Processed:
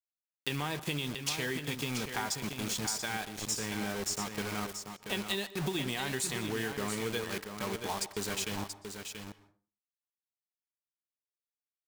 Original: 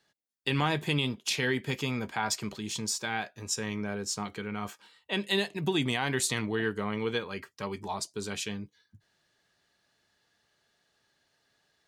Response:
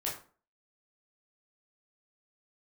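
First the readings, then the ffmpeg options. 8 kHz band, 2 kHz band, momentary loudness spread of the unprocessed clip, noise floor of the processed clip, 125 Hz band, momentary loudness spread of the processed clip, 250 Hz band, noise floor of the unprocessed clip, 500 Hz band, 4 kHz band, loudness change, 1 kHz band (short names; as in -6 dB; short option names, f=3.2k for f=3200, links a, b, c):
-0.5 dB, -4.0 dB, 9 LU, under -85 dBFS, -4.5 dB, 7 LU, -4.0 dB, -74 dBFS, -4.0 dB, -2.5 dB, -3.5 dB, -3.5 dB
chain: -filter_complex "[0:a]highshelf=f=5.9k:g=6,acrusher=bits=5:mix=0:aa=0.000001,acompressor=threshold=-31dB:ratio=6,aecho=1:1:682:0.422,asplit=2[a][b];[1:a]atrim=start_sample=2205,highshelf=f=12k:g=-11,adelay=120[c];[b][c]afir=irnorm=-1:irlink=0,volume=-19dB[d];[a][d]amix=inputs=2:normalize=0"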